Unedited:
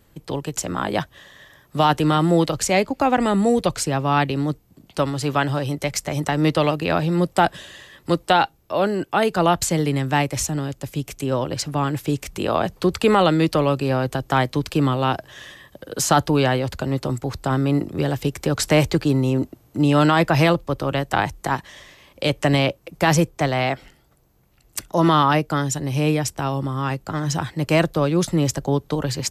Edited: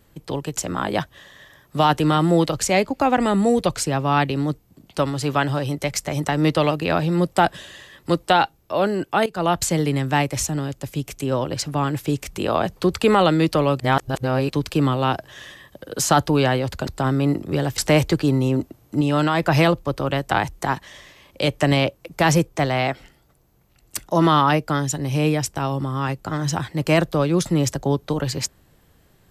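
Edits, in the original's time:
9.26–9.71 s: fade in equal-power, from -16 dB
13.80–14.50 s: reverse
16.87–17.33 s: delete
18.24–18.60 s: delete
19.83–20.25 s: gain -3.5 dB

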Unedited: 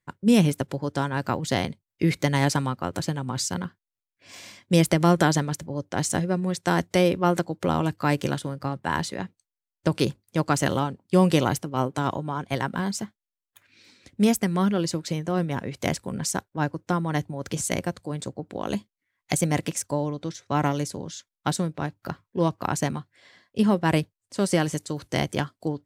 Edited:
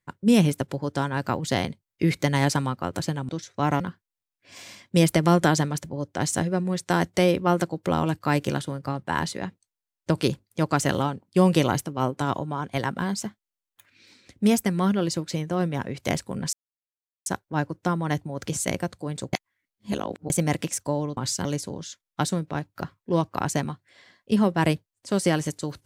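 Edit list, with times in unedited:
3.29–3.57 s: swap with 20.21–20.72 s
16.30 s: insert silence 0.73 s
18.37–19.34 s: reverse

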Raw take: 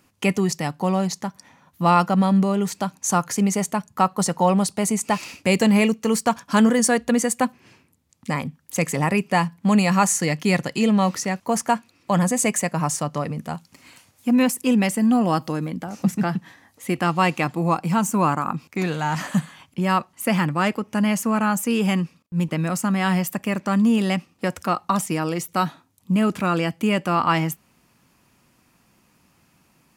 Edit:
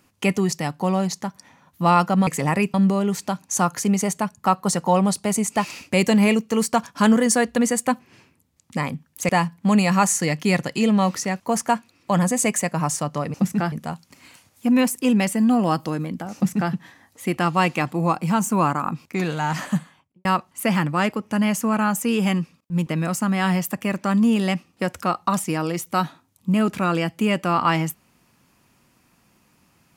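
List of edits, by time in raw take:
8.82–9.29 s: move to 2.27 s
15.97–16.35 s: copy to 13.34 s
19.22–19.87 s: studio fade out

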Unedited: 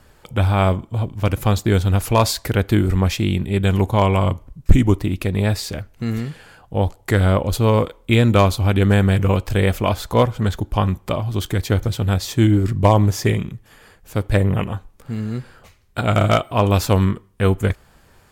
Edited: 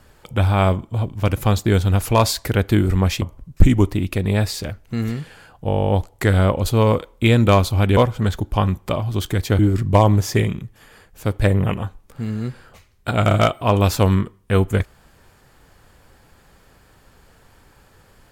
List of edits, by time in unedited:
3.21–4.30 s: delete
6.76 s: stutter 0.02 s, 12 plays
8.84–10.17 s: delete
11.79–12.49 s: delete

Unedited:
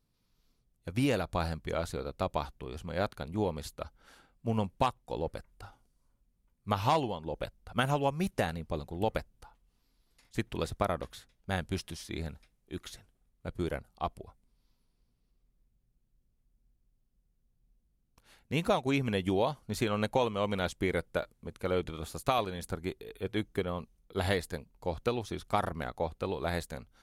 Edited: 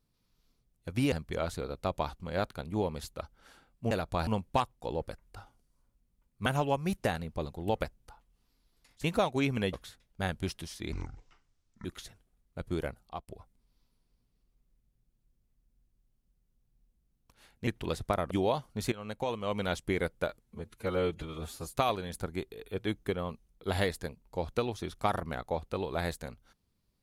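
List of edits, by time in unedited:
1.12–1.48 s: move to 4.53 s
2.56–2.82 s: delete
6.72–7.80 s: delete
10.38–11.02 s: swap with 18.55–19.24 s
12.21–12.73 s: speed 56%
13.91–14.16 s: fade out
19.85–20.61 s: fade in, from -15.5 dB
21.36–22.24 s: stretch 1.5×

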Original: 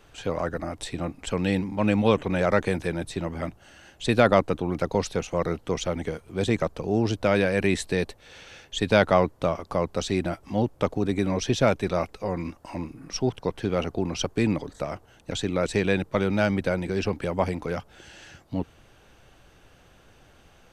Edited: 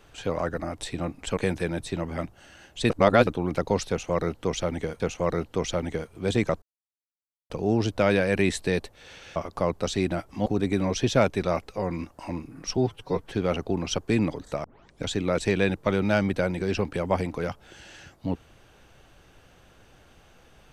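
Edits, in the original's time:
1.37–2.61 s: delete
4.14–4.51 s: reverse
5.13–6.24 s: loop, 2 plays
6.75 s: insert silence 0.88 s
8.61–9.50 s: delete
10.60–10.92 s: delete
13.23–13.59 s: stretch 1.5×
14.92 s: tape start 0.40 s

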